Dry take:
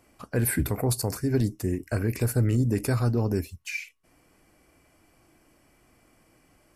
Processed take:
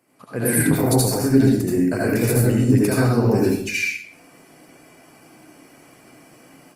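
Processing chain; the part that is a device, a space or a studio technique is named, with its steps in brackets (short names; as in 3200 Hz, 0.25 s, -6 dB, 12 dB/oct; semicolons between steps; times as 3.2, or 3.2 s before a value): far-field microphone of a smart speaker (reverb RT60 0.60 s, pre-delay 69 ms, DRR -3.5 dB; HPF 130 Hz 24 dB/oct; AGC gain up to 11 dB; gain -2.5 dB; Opus 32 kbps 48000 Hz)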